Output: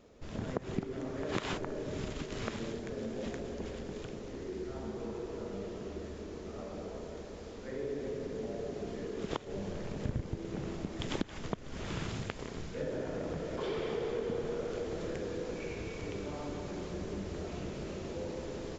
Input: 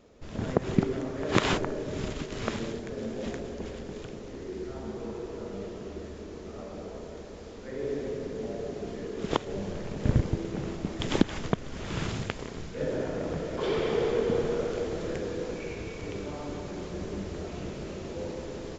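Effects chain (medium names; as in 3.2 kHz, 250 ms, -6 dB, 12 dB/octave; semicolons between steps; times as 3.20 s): compression 2.5:1, threshold -33 dBFS, peak gain reduction 12.5 dB; trim -2 dB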